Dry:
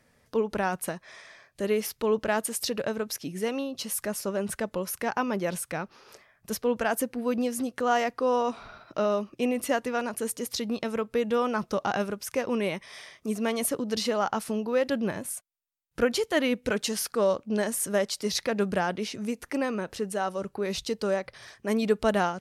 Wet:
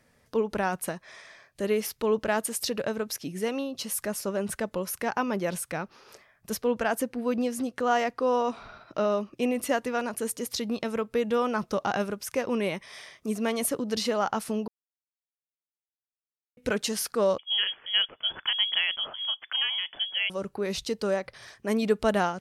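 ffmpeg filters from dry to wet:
-filter_complex "[0:a]asettb=1/sr,asplit=3[a][b][c];[a]atrim=end=6.714[d];[b]atrim=start=6.71:end=9.34,asetpts=PTS-STARTPTS,afade=t=in:d=0.004:c=qsin,afade=t=out:st=2.626:d=0.004:c=qsin,highshelf=f=9.7k:g=-6.5[e];[c]atrim=start=9.336[f];[d][e]acrossfade=d=0.004:c1=hsin:c2=qsin[g];[g][f]acrossfade=d=0.004:c1=qsin:c2=hsin,asettb=1/sr,asplit=3[h][i][j];[h]atrim=end=17.384[k];[i]atrim=start=17.38:end=20.3,asetpts=PTS-STARTPTS,afade=t=in:d=0.004:c=qsin,afade=t=out:st=2.916:d=0.004:c=qsin,lowpass=f=3k:t=q:w=0.5098,lowpass=f=3k:t=q:w=0.6013,lowpass=f=3k:t=q:w=0.9,lowpass=f=3k:t=q:w=2.563,afreqshift=-3500[l];[j]atrim=start=20.296[m];[k][l]acrossfade=d=0.004:c1=hsin:c2=qsin[n];[n][m]acrossfade=d=0.004:c1=qsin:c2=hsin,asplit=3[o][p][q];[o]atrim=end=14.68,asetpts=PTS-STARTPTS,afade=t=out:st=14.676:d=0.004:c=hsin[r];[p]atrim=start=14.68:end=16.57,asetpts=PTS-STARTPTS,volume=0[s];[q]atrim=start=16.57,asetpts=PTS-STARTPTS,afade=t=in:d=0.004:c=hsin[t];[r][s][t]concat=n=3:v=0:a=1"

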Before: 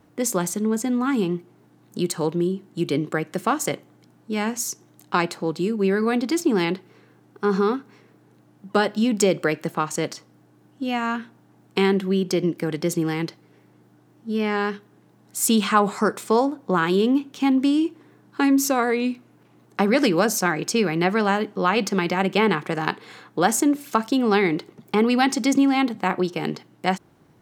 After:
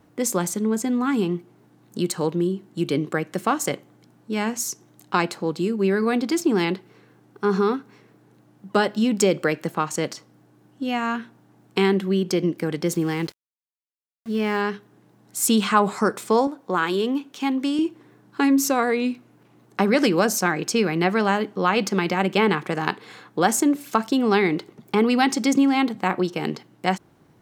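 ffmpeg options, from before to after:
-filter_complex "[0:a]asettb=1/sr,asplit=3[a][b][c];[a]atrim=end=12.874[d];[b]atrim=start=12.87:end=14.61,asetpts=PTS-STARTPTS,afade=t=in:d=0.004:c=qsin,afade=t=out:st=1.736:d=0.004:c=qsin,aeval=exprs='val(0)*gte(abs(val(0)),0.00891)':c=same[e];[c]atrim=start=14.606[f];[d][e]acrossfade=d=0.004:c1=hsin:c2=qsin[g];[g][f]acrossfade=d=0.004:c1=qsin:c2=hsin,asettb=1/sr,asplit=3[h][i][j];[h]atrim=end=16.474[k];[i]atrim=start=16.47:end=17.79,asetpts=PTS-STARTPTS,afade=t=in:d=0.004:c=qsin,afade=t=out:st=1.316:d=0.004:c=qsin,highpass=f=380:p=1[l];[j]atrim=start=17.786[m];[k][l]acrossfade=d=0.004:c1=hsin:c2=qsin[n];[n][m]acrossfade=d=0.004:c1=qsin:c2=hsin"

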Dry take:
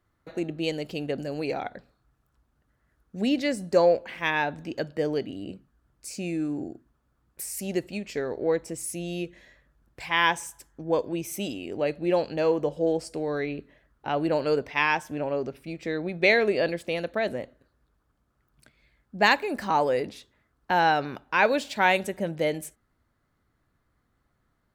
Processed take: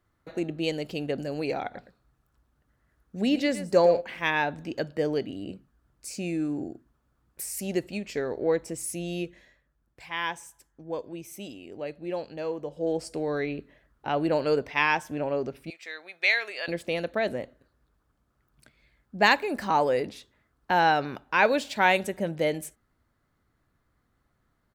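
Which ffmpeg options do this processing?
-filter_complex "[0:a]asplit=3[a][b][c];[a]afade=t=out:st=1.73:d=0.02[d];[b]aecho=1:1:115:0.237,afade=t=in:st=1.73:d=0.02,afade=t=out:st=4:d=0.02[e];[c]afade=t=in:st=4:d=0.02[f];[d][e][f]amix=inputs=3:normalize=0,asettb=1/sr,asplit=3[g][h][i];[g]atrim=end=15.704[j];[h]atrim=start=15.7:end=16.68,asetpts=PTS-STARTPTS,afade=t=in:d=0.004:c=qsin,afade=t=out:st=0.976:d=0.004:c=qsin,highpass=1.3k[k];[i]atrim=start=16.676[l];[j][k]acrossfade=d=0.004:c1=hsin:c2=qsin[m];[m][l]acrossfade=d=0.004:c1=qsin:c2=hsin,asplit=3[n][o][p];[n]atrim=end=9.61,asetpts=PTS-STARTPTS,afade=t=out:st=9.23:d=0.38:silence=0.375837[q];[o]atrim=start=9.61:end=12.69,asetpts=PTS-STARTPTS,volume=-8.5dB[r];[p]atrim=start=12.69,asetpts=PTS-STARTPTS,afade=t=in:d=0.38:silence=0.375837[s];[q][r][s]concat=n=3:v=0:a=1"

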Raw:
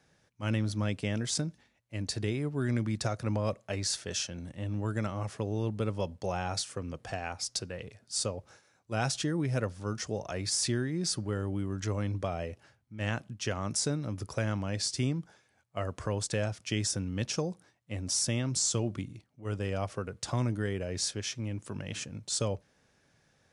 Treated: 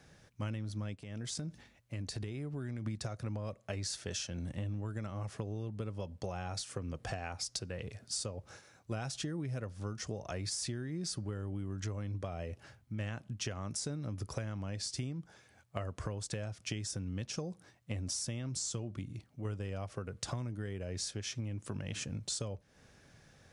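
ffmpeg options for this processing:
-filter_complex "[0:a]asplit=3[a][b][c];[a]afade=t=out:st=0.94:d=0.02[d];[b]acompressor=threshold=-45dB:ratio=3:attack=3.2:release=140:knee=1:detection=peak,afade=t=in:st=0.94:d=0.02,afade=t=out:st=2.86:d=0.02[e];[c]afade=t=in:st=2.86:d=0.02[f];[d][e][f]amix=inputs=3:normalize=0,lowshelf=f=120:g=7,bandreject=f=910:w=24,acompressor=threshold=-41dB:ratio=10,volume=5.5dB"

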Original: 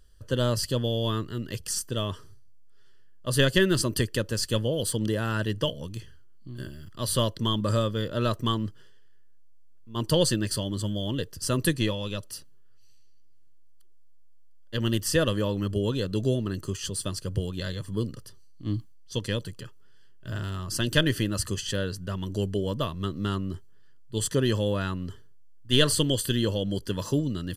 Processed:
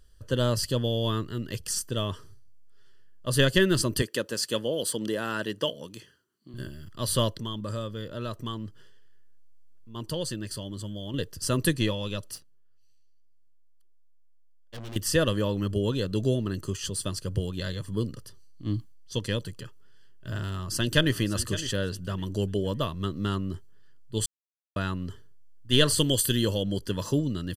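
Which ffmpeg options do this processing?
-filter_complex "[0:a]asettb=1/sr,asplit=3[a][b][c];[a]atrim=end=4.024[d];[b]atrim=start=4.02:end=6.54,asetpts=PTS-STARTPTS,afade=t=in:d=0.004:c=qsin,afade=t=out:st=2.516:d=0.004:c=qsin,highpass=240[e];[c]atrim=start=6.536[f];[d][e]acrossfade=d=0.004:c1=hsin:c2=qsin[g];[g][f]acrossfade=d=0.004:c1=qsin:c2=hsin,asettb=1/sr,asplit=3[h][i][j];[h]atrim=end=7.404[k];[i]atrim=start=7.4:end=11.14,asetpts=PTS-STARTPTS,afade=t=in:d=0.004:c=qsin,afade=t=out:st=3.736:d=0.004:c=qsin,acompressor=threshold=-44dB:ratio=1.5:attack=3.2:release=140:knee=1:detection=peak[l];[j]atrim=start=11.136[m];[k][l]acrossfade=d=0.004:c1=hsin:c2=qsin[n];[n][m]acrossfade=d=0.004:c1=qsin:c2=hsin,asettb=1/sr,asplit=3[o][p][q];[o]atrim=end=12.354[r];[p]atrim=start=12.35:end=14.96,asetpts=PTS-STARTPTS,afade=t=in:d=0.004:c=qsin,afade=t=out:st=2.606:d=0.004:c=qsin,aeval=exprs='(tanh(79.4*val(0)+0.8)-tanh(0.8))/79.4':c=same[s];[q]atrim=start=14.956[t];[r][s]acrossfade=d=0.004:c1=hsin:c2=qsin[u];[u][t]acrossfade=d=0.004:c1=qsin:c2=hsin,asplit=2[v][w];[w]afade=t=in:st=20.47:d=0.01,afade=t=out:st=21.16:d=0.01,aecho=0:1:560|1120|1680:0.211349|0.0528372|0.0132093[x];[v][x]amix=inputs=2:normalize=0,asettb=1/sr,asplit=3[y][z][aa];[y]atrim=end=25.984[ab];[z]atrim=start=25.98:end=26.63,asetpts=PTS-STARTPTS,afade=t=in:d=0.004:c=qsin,afade=t=out:st=0.646:d=0.004:c=qsin,highshelf=f=6.8k:g=9.5[ac];[aa]atrim=start=26.626[ad];[ab][ac]acrossfade=d=0.004:c1=hsin:c2=qsin[ae];[ae][ad]acrossfade=d=0.004:c1=qsin:c2=hsin,asplit=3[af][ag][ah];[af]atrim=end=24.26,asetpts=PTS-STARTPTS,afade=t=out:st=24.256:d=0.004:c=hsin[ai];[ag]atrim=start=24.26:end=24.76,asetpts=PTS-STARTPTS,volume=0[aj];[ah]atrim=start=24.76,asetpts=PTS-STARTPTS,afade=t=in:d=0.004:c=hsin[ak];[ai][aj][ak]concat=n=3:v=0:a=1"

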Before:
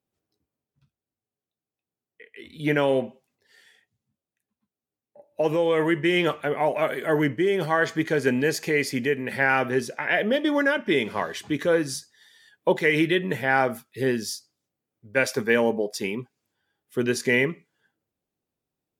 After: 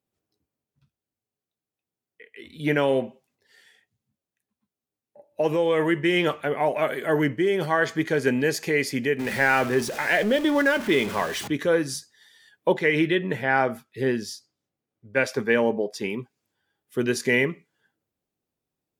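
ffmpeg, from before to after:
-filter_complex "[0:a]asettb=1/sr,asplit=3[a][b][c];[a]atrim=end=9.194[d];[b]atrim=start=9.19:end=11.48,asetpts=PTS-STARTPTS,afade=t=in:d=0.004:c=qsin,afade=t=out:st=2.286:d=0.004:c=qsin,aeval=exprs='val(0)+0.5*0.0299*sgn(val(0))':c=same[e];[c]atrim=start=11.476[f];[d][e]acrossfade=d=0.004:c1=hsin:c2=qsin[g];[g][f]acrossfade=d=0.004:c1=qsin:c2=hsin,asettb=1/sr,asplit=3[h][i][j];[h]atrim=end=12.744[k];[i]atrim=start=12.74:end=16.1,asetpts=PTS-STARTPTS,afade=t=in:d=0.004:c=qsin,afade=t=out:st=3.356:d=0.004:c=qsin,highshelf=f=6.4k:g=-10[l];[j]atrim=start=16.096[m];[k][l]acrossfade=d=0.004:c1=hsin:c2=qsin[n];[n][m]acrossfade=d=0.004:c1=qsin:c2=hsin"

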